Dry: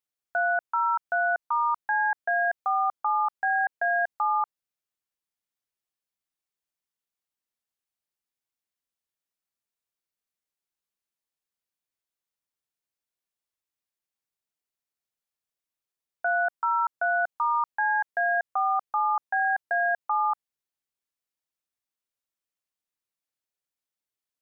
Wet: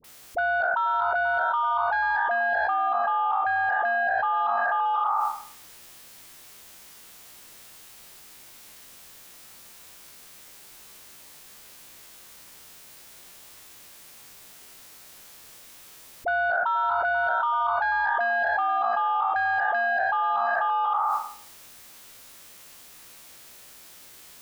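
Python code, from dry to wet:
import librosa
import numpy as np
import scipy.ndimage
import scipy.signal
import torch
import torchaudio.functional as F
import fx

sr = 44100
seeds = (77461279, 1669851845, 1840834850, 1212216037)

y = fx.spec_trails(x, sr, decay_s=0.52)
y = fx.dispersion(y, sr, late='highs', ms=43.0, hz=760.0)
y = 10.0 ** (-17.0 / 20.0) * np.tanh(y / 10.0 ** (-17.0 / 20.0))
y = fx.air_absorb(y, sr, metres=180.0, at=(2.26, 4.37))
y = fx.echo_multitap(y, sr, ms=(488, 571), db=(-13.5, -14.0))
y = fx.env_flatten(y, sr, amount_pct=100)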